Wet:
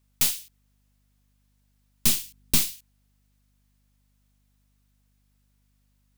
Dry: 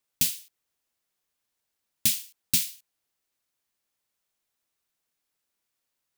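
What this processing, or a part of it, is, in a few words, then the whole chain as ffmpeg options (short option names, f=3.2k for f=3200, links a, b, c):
valve amplifier with mains hum: -filter_complex "[0:a]aeval=exprs='(tanh(14.1*val(0)+0.6)-tanh(0.6))/14.1':c=same,aeval=exprs='val(0)+0.0002*(sin(2*PI*50*n/s)+sin(2*PI*2*50*n/s)/2+sin(2*PI*3*50*n/s)/3+sin(2*PI*4*50*n/s)/4+sin(2*PI*5*50*n/s)/5)':c=same,asettb=1/sr,asplit=3[a][b][c];[a]atrim=end=2.064[d];[b]atrim=start=2.06:end=2.73,asetpts=PTS-STARTPTS,afade=t=in:d=0.004:c=qsin,afade=t=out:st=0.666:d=0.004:c=qsin,lowshelf=f=440:t=q:w=1.5:g=7[e];[c]atrim=start=2.726[f];[d][e]acrossfade=d=0.004:c1=hsin:c2=qsin[g];[g][f]acrossfade=d=0.004:c1=qsin:c2=hsin,volume=7.5dB"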